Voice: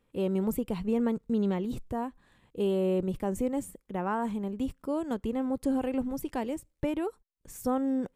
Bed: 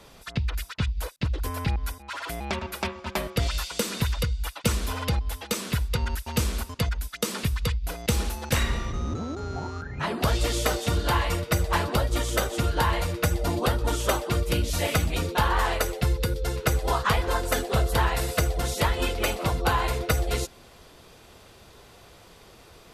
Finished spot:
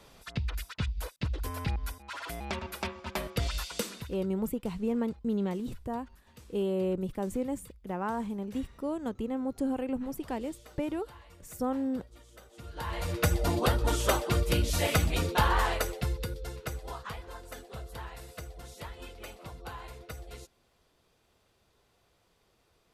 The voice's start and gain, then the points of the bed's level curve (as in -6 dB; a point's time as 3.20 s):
3.95 s, -2.5 dB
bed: 3.79 s -5.5 dB
4.31 s -28.5 dB
12.43 s -28.5 dB
13.16 s -2 dB
15.51 s -2 dB
17.28 s -19 dB